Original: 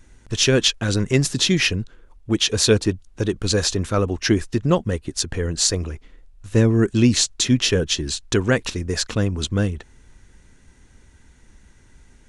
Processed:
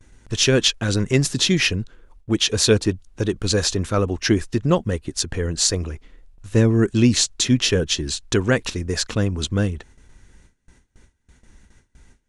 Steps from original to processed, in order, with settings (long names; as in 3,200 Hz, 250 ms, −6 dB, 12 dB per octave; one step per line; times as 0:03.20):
noise gate with hold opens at −40 dBFS